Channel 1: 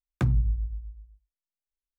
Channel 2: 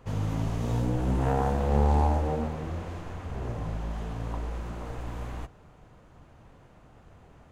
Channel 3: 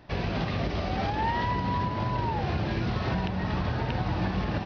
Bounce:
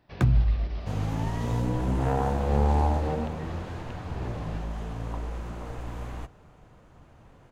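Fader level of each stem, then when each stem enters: +2.5 dB, 0.0 dB, -12.5 dB; 0.00 s, 0.80 s, 0.00 s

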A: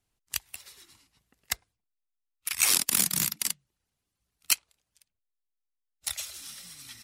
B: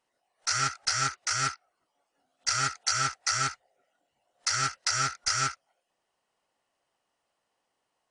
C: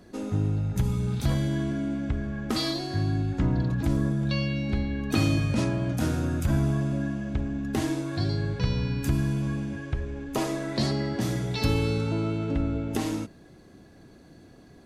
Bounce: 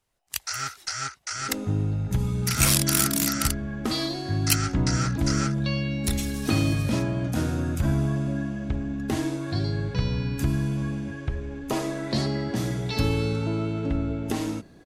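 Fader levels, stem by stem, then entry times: +1.0 dB, -3.5 dB, +0.5 dB; 0.00 s, 0.00 s, 1.35 s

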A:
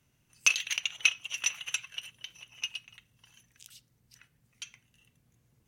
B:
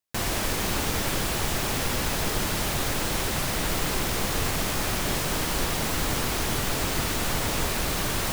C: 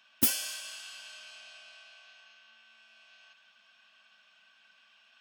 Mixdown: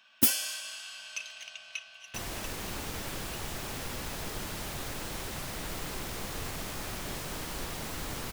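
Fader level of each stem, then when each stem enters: -15.0 dB, -11.0 dB, +2.0 dB; 0.70 s, 2.00 s, 0.00 s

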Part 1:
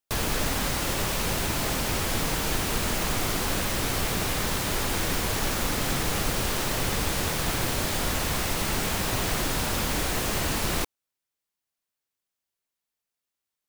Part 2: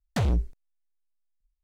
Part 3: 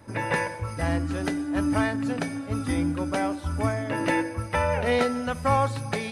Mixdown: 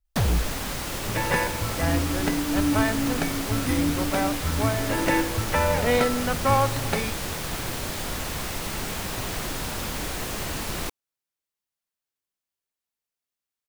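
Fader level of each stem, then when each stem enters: -3.5 dB, +1.5 dB, +1.5 dB; 0.05 s, 0.00 s, 1.00 s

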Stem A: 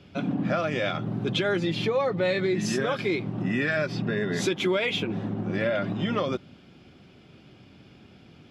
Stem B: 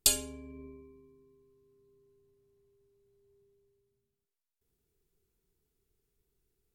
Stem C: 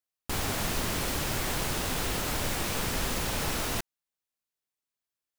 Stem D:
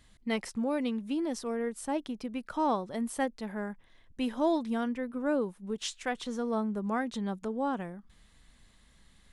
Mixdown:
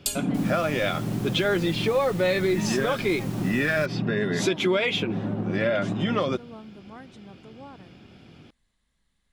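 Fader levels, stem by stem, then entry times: +2.0 dB, -3.5 dB, -12.5 dB, -13.0 dB; 0.00 s, 0.00 s, 0.05 s, 0.00 s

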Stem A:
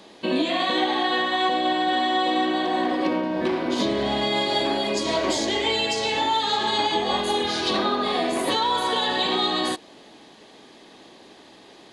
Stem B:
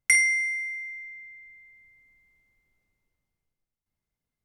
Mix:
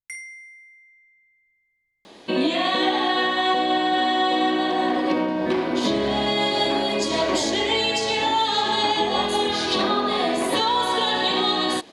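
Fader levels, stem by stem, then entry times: +1.5 dB, -16.5 dB; 2.05 s, 0.00 s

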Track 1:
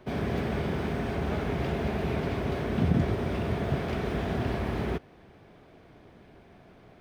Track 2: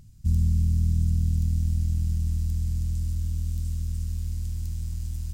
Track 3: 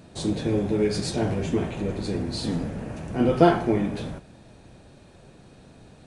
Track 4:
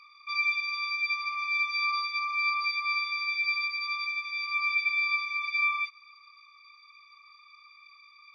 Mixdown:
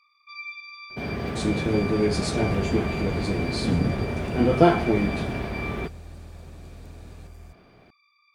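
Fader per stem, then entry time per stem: -0.5 dB, -14.0 dB, 0.0 dB, -10.0 dB; 0.90 s, 2.20 s, 1.20 s, 0.00 s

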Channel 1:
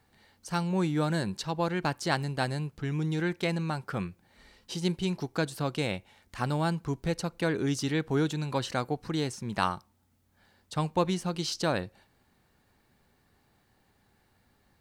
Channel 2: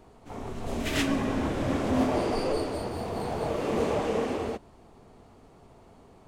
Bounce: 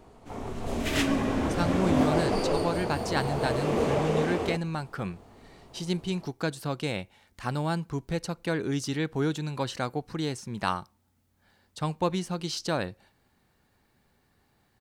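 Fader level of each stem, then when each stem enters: -0.5 dB, +1.0 dB; 1.05 s, 0.00 s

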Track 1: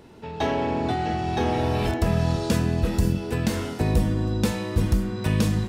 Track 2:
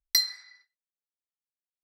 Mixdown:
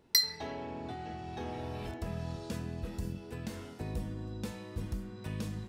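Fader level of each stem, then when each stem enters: -16.0 dB, -2.5 dB; 0.00 s, 0.00 s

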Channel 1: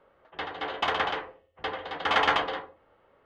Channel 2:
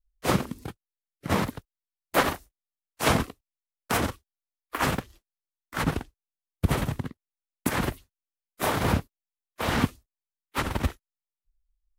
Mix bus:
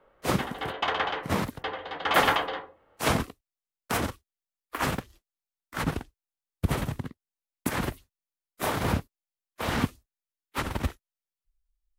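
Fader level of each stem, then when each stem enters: -0.5 dB, -2.5 dB; 0.00 s, 0.00 s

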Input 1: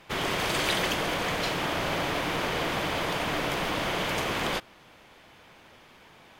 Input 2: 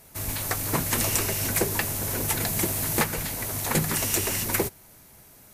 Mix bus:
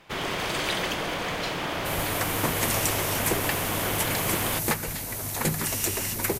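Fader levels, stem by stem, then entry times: -1.0 dB, -2.0 dB; 0.00 s, 1.70 s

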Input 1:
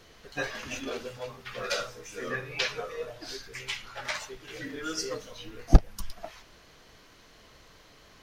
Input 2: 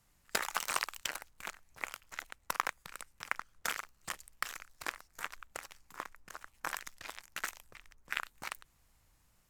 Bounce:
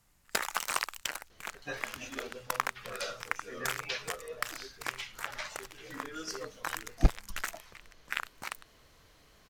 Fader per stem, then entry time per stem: -7.0 dB, +2.0 dB; 1.30 s, 0.00 s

